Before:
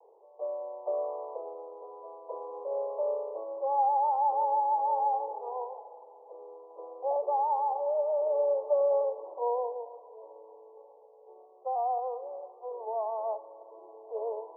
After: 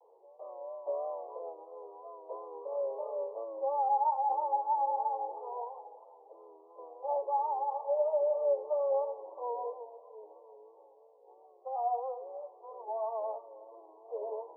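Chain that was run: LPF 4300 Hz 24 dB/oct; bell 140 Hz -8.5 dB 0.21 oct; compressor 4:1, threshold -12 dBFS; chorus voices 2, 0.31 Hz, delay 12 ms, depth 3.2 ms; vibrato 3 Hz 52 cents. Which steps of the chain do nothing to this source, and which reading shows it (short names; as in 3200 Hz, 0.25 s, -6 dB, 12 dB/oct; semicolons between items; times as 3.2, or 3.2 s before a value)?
LPF 4300 Hz: input band ends at 1100 Hz; bell 140 Hz: input band starts at 360 Hz; compressor, threshold -12 dBFS: input peak -17.0 dBFS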